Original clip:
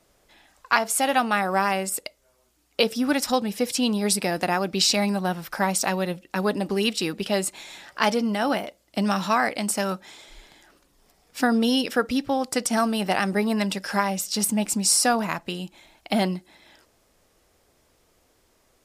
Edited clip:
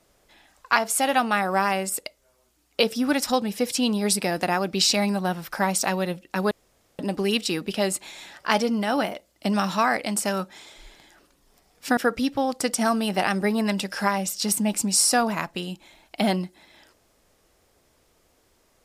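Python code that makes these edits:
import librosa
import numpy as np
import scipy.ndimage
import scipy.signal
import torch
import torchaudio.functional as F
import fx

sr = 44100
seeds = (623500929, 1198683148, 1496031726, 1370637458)

y = fx.edit(x, sr, fx.insert_room_tone(at_s=6.51, length_s=0.48),
    fx.cut(start_s=11.49, length_s=0.4), tone=tone)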